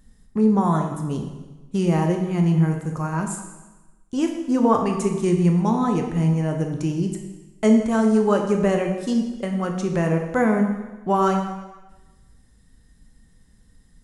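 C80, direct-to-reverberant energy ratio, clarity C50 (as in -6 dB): 7.5 dB, 3.0 dB, 5.5 dB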